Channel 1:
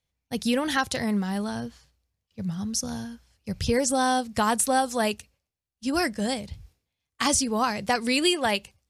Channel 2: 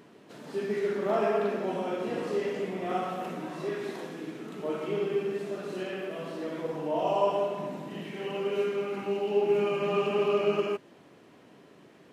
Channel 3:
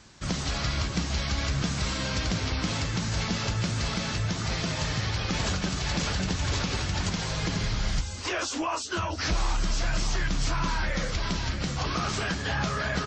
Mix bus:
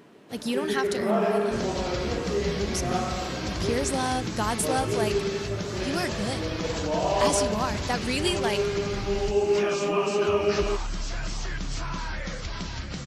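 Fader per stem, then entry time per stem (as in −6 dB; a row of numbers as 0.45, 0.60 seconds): −4.5, +2.0, −4.5 decibels; 0.00, 0.00, 1.30 seconds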